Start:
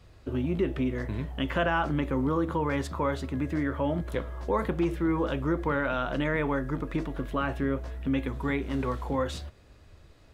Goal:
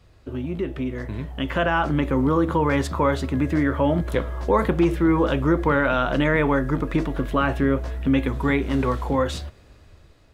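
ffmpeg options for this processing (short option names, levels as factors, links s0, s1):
-af "dynaudnorm=f=670:g=5:m=2.51"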